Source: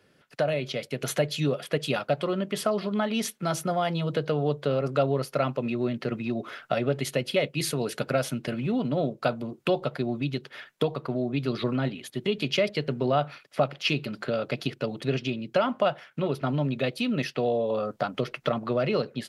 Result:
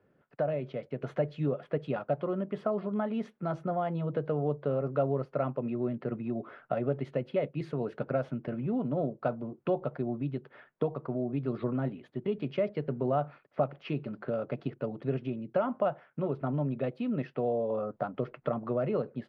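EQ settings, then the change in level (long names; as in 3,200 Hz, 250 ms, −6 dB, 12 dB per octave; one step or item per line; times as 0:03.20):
low-pass filter 1,200 Hz 12 dB per octave
−4.0 dB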